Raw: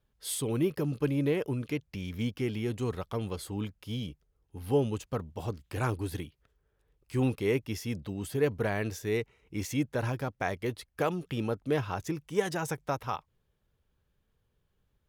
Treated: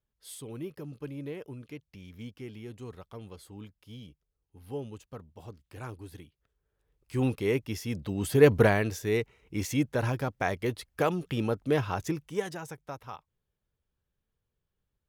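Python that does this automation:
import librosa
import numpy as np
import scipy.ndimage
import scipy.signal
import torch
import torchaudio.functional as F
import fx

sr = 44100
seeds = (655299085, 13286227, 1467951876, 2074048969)

y = fx.gain(x, sr, db=fx.line((6.21, -10.5), (7.25, 0.5), (7.88, 0.5), (8.59, 11.0), (8.86, 2.5), (12.11, 2.5), (12.68, -8.5)))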